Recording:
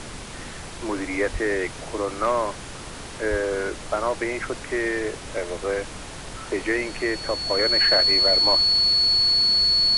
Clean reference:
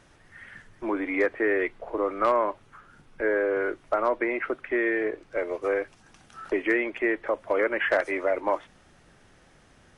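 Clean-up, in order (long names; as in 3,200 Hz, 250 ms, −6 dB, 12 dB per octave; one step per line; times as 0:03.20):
notch filter 4,400 Hz, Q 30
high-pass at the plosives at 0:01.32/0:03.30
broadband denoise 20 dB, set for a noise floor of −37 dBFS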